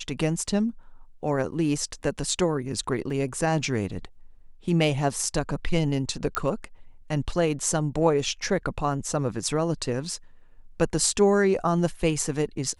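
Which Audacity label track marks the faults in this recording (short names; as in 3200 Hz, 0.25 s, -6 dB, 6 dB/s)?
3.100000	3.100000	gap 3.1 ms
6.350000	6.350000	pop -11 dBFS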